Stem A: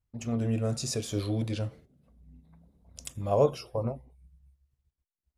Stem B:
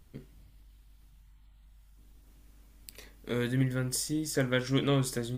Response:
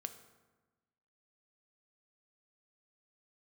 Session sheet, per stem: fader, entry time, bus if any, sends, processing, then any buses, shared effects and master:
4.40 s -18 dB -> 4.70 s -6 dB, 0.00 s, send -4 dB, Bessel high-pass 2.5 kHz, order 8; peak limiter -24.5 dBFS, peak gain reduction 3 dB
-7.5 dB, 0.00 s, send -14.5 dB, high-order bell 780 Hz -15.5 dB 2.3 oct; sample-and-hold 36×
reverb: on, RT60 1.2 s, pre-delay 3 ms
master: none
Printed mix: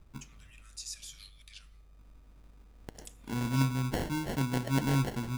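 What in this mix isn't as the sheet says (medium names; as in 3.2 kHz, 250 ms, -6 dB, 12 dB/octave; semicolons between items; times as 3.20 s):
stem A -18.0 dB -> -8.0 dB; stem B -7.5 dB -> 0.0 dB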